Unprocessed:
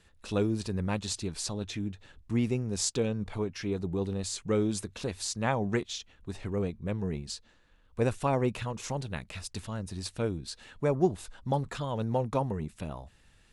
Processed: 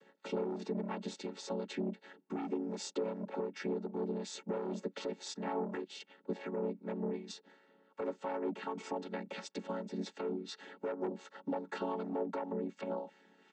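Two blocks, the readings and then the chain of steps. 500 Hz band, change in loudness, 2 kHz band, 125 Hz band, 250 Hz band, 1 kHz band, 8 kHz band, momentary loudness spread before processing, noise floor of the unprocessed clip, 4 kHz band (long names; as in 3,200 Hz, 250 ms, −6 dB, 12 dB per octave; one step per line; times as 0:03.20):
−5.0 dB, −7.5 dB, −7.5 dB, −16.5 dB, −6.5 dB, −6.0 dB, −14.5 dB, 11 LU, −62 dBFS, −9.0 dB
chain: channel vocoder with a chord as carrier minor triad, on F#3
soft clipping −26.5 dBFS, distortion −12 dB
high-pass filter 290 Hz 12 dB per octave
downward compressor 4 to 1, threshold −43 dBFS, peak gain reduction 12 dB
comb filter 2.2 ms, depth 47%
brickwall limiter −37.5 dBFS, peak gain reduction 7.5 dB
two-band tremolo in antiphase 2.7 Hz, depth 50%, crossover 820 Hz
high-shelf EQ 3,800 Hz −7.5 dB
level +12.5 dB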